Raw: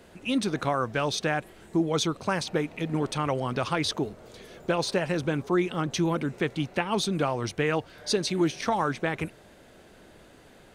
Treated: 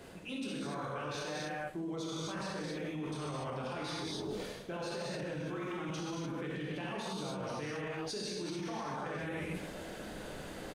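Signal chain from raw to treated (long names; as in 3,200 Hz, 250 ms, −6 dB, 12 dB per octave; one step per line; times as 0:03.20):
single-tap delay 141 ms −18.5 dB
reverb whose tail is shaped and stops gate 320 ms flat, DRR −7.5 dB
brickwall limiter −17 dBFS, peak gain reduction 11 dB
reversed playback
downward compressor 8 to 1, threshold −37 dBFS, peak gain reduction 16 dB
reversed playback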